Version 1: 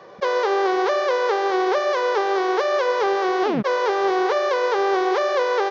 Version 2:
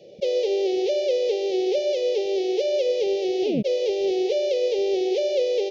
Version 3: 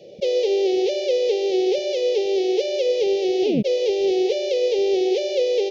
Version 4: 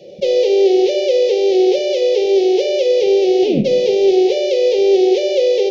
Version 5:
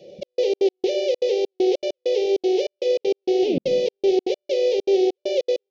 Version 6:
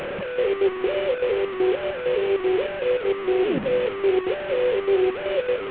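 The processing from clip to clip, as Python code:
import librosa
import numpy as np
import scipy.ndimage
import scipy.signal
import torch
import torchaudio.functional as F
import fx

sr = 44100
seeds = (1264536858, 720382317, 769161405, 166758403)

y1 = scipy.signal.sosfilt(scipy.signal.ellip(3, 1.0, 60, [590.0, 2600.0], 'bandstop', fs=sr, output='sos'), x)
y2 = fx.dynamic_eq(y1, sr, hz=610.0, q=6.2, threshold_db=-38.0, ratio=4.0, max_db=-7)
y2 = y2 * 10.0 ** (3.5 / 20.0)
y3 = fx.room_shoebox(y2, sr, seeds[0], volume_m3=660.0, walls='furnished', distance_m=0.95)
y3 = y3 * 10.0 ** (4.0 / 20.0)
y4 = fx.step_gate(y3, sr, bpm=197, pattern='xxx..xx.x..xxxx.', floor_db=-60.0, edge_ms=4.5)
y4 = y4 * 10.0 ** (-6.0 / 20.0)
y5 = fx.delta_mod(y4, sr, bps=16000, step_db=-22.0)
y5 = y5 * 10.0 ** (-1.5 / 20.0)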